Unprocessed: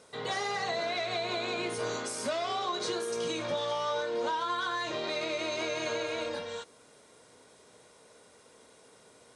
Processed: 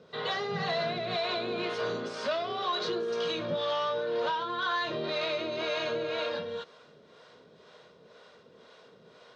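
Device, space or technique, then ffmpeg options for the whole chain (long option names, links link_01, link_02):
guitar amplifier with harmonic tremolo: -filter_complex "[0:a]asettb=1/sr,asplit=3[link_01][link_02][link_03];[link_01]atrim=end=0.514[link_04];[link_02]atrim=start=0.51:end=1.16,asetpts=PTS-STARTPTS,afade=type=in:duration=0.004:curve=qsin,afade=type=out:start_time=0.646:duration=0.004:curve=qsin,equalizer=frequency=160:width_type=o:width=0.75:gain=12[link_05];[link_03]atrim=start=1.156[link_06];[link_04][link_05]acrossfade=duration=0.004:curve1=hsin:curve2=qsin[link_07];[link_07][link_06]acrossfade=duration=0.004:curve1=qsin:curve2=hsin,acrossover=split=490[link_08][link_09];[link_08]aeval=exprs='val(0)*(1-0.7/2+0.7/2*cos(2*PI*2*n/s))':channel_layout=same[link_10];[link_09]aeval=exprs='val(0)*(1-0.7/2-0.7/2*cos(2*PI*2*n/s))':channel_layout=same[link_11];[link_10][link_11]amix=inputs=2:normalize=0,asoftclip=type=tanh:threshold=-30dB,highpass=94,equalizer=frequency=110:width_type=q:width=4:gain=-5,equalizer=frequency=160:width_type=q:width=4:gain=5,equalizer=frequency=290:width_type=q:width=4:gain=-7,equalizer=frequency=840:width_type=q:width=4:gain=-6,equalizer=frequency=2200:width_type=q:width=4:gain=-6,lowpass=frequency=4300:width=0.5412,lowpass=frequency=4300:width=1.3066,volume=8dB"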